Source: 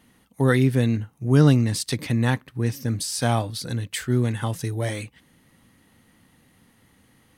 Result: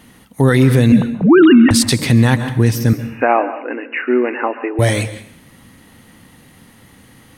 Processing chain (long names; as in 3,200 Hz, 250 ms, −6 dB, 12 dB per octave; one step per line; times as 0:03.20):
0:00.92–0:01.71: three sine waves on the formant tracks
0:02.93–0:04.79: linear-phase brick-wall band-pass 250–2,900 Hz
dense smooth reverb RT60 0.59 s, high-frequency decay 0.95×, pre-delay 120 ms, DRR 13.5 dB
boost into a limiter +14 dB
level −1 dB